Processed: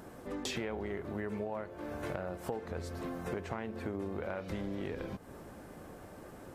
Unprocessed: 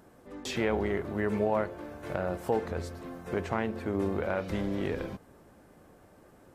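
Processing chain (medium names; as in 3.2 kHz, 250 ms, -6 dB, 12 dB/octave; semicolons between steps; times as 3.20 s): compression 6:1, threshold -43 dBFS, peak gain reduction 18.5 dB; trim +7 dB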